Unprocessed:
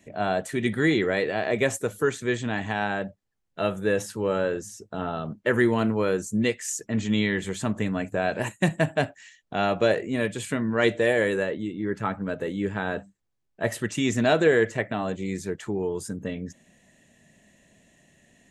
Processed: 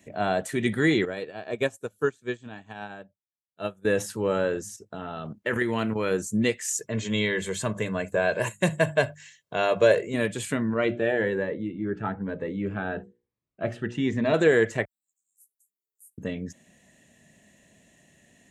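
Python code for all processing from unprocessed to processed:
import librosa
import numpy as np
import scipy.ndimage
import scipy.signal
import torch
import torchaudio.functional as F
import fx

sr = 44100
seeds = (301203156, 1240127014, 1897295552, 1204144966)

y = fx.chain(x, sr, fx.notch(hz=2000.0, q=5.9),
    fx.upward_expand(threshold_db=-35.0, expansion=2.5), at=(1.05, 3.85))
y = fx.chain(y, sr, fx.level_steps(step_db=9),
    fx.dynamic_eq(hz=2400.0, q=0.92, threshold_db=-46.0, ratio=4.0, max_db=6), at=(4.76, 6.11))
y = fx.chain(y, sr, fx.highpass(hz=100.0, slope=12),
    fx.hum_notches(base_hz=50, count=4),
    fx.comb(ms=1.9, depth=0.6), at=(6.74, 10.14))
y = fx.chain(y, sr, fx.lowpass(hz=2400.0, slope=12),
    fx.hum_notches(base_hz=60, count=9),
    fx.notch_cascade(direction='rising', hz=1.1), at=(10.74, 14.34))
y = fx.chain(y, sr, fx.cheby2_highpass(hz=2700.0, order=4, stop_db=80),
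    fx.doubler(ms=14.0, db=-6.0), at=(14.85, 16.18))
y = scipy.signal.sosfilt(scipy.signal.butter(2, 42.0, 'highpass', fs=sr, output='sos'), y)
y = fx.high_shelf(y, sr, hz=9200.0, db=4.0)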